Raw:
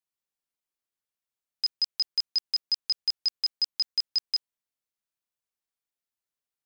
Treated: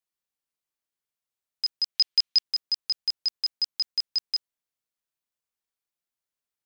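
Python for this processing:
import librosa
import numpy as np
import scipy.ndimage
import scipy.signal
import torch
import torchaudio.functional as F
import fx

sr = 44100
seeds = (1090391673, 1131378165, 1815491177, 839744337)

y = fx.peak_eq(x, sr, hz=3100.0, db=9.5, octaves=1.7, at=(1.95, 2.43))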